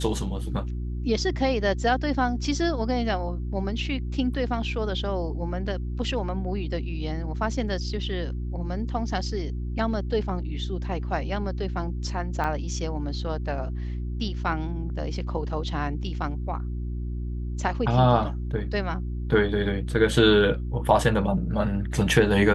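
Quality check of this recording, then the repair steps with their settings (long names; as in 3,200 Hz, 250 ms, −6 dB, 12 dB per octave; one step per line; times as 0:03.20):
mains hum 60 Hz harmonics 6 −30 dBFS
0:12.44–0:12.45: drop-out 6.3 ms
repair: hum removal 60 Hz, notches 6
repair the gap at 0:12.44, 6.3 ms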